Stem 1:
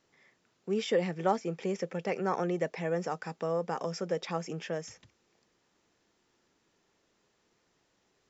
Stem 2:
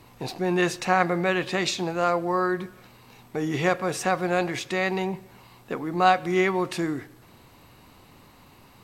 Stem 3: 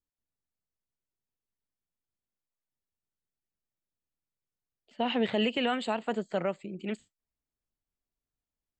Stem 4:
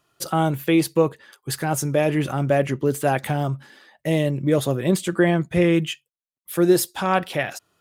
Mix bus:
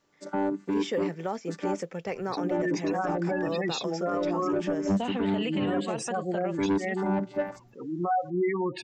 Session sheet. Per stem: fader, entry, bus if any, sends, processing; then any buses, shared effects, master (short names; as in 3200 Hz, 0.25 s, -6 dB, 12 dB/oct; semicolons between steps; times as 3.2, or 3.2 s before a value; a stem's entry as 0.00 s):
-0.5 dB, 0.00 s, no send, short-mantissa float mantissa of 6-bit
-1.5 dB, 2.05 s, no send, spectral gate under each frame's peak -10 dB strong; attack slew limiter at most 210 dB/s
-2.5 dB, 0.00 s, no send, dry
-1.5 dB, 0.00 s, muted 1.83–2.37, no send, chord vocoder bare fifth, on G3; bell 3100 Hz -13 dB 0.98 oct; soft clip -18 dBFS, distortion -10 dB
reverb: off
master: limiter -20 dBFS, peak gain reduction 11 dB